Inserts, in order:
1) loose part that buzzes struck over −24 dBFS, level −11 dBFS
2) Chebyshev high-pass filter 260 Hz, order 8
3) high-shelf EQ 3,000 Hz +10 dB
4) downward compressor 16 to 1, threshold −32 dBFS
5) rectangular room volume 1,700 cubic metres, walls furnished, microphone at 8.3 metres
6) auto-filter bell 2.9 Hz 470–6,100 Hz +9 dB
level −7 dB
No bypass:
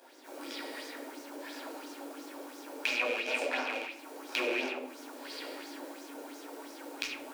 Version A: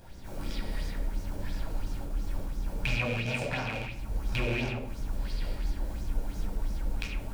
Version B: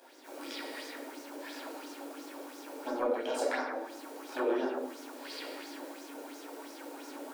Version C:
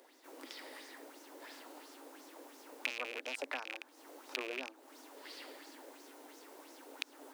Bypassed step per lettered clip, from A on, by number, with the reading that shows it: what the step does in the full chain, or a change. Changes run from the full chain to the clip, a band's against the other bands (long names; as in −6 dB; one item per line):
2, 250 Hz band +5.0 dB
1, 2 kHz band −9.5 dB
5, 250 Hz band −2.5 dB